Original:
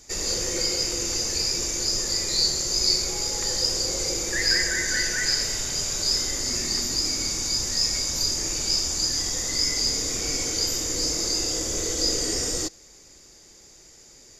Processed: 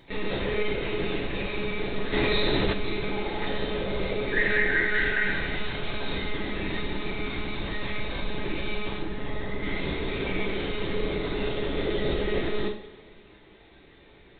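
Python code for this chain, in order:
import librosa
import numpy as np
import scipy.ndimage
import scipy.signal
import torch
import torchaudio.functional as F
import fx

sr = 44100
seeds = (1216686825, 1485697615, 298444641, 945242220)

y = fx.lpc_monotone(x, sr, seeds[0], pitch_hz=210.0, order=16)
y = fx.high_shelf(y, sr, hz=2500.0, db=-12.0, at=(8.97, 9.63))
y = fx.rev_double_slope(y, sr, seeds[1], early_s=0.51, late_s=2.2, knee_db=-19, drr_db=-2.0)
y = fx.env_flatten(y, sr, amount_pct=70, at=(2.12, 2.72), fade=0.02)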